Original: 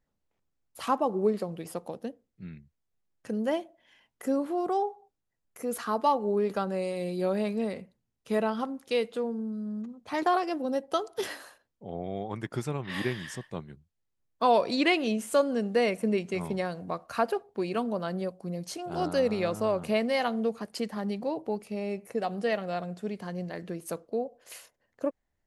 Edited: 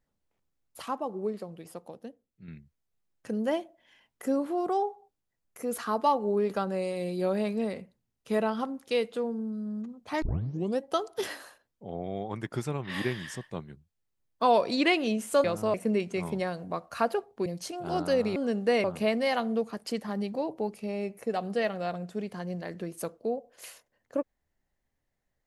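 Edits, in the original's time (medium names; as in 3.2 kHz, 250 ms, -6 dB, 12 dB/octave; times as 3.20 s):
0.82–2.48 s: gain -6.5 dB
10.22 s: tape start 0.58 s
15.44–15.92 s: swap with 19.42–19.72 s
17.64–18.52 s: delete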